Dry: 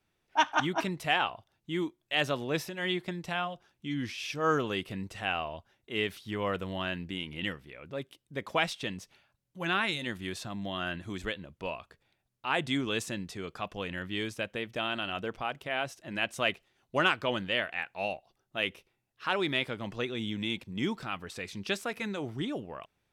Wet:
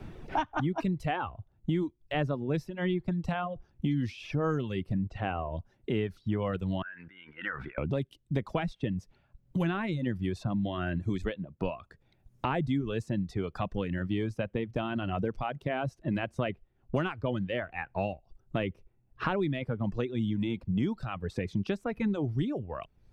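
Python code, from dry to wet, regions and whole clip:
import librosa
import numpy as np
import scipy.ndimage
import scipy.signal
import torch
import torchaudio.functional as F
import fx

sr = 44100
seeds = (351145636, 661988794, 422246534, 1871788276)

y = fx.chain(x, sr, fx.block_float(bits=7),
    fx.lowpass(hz=5200.0, slope=12),
    fx.high_shelf(hz=3500.0, db=-8.0), at=(4.94, 5.52))
y = fx.chain(y, sr, fx.bandpass_q(hz=1500.0, q=6.8),
    fx.sustainer(db_per_s=76.0), at=(6.82, 7.78))
y = fx.tilt_eq(y, sr, slope=-4.5)
y = fx.dereverb_blind(y, sr, rt60_s=0.99)
y = fx.band_squash(y, sr, depth_pct=100)
y = F.gain(torch.from_numpy(y), -3.0).numpy()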